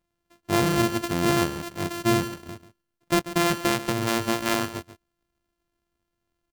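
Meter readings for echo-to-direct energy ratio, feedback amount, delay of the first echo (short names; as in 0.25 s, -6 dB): -14.0 dB, no steady repeat, 0.14 s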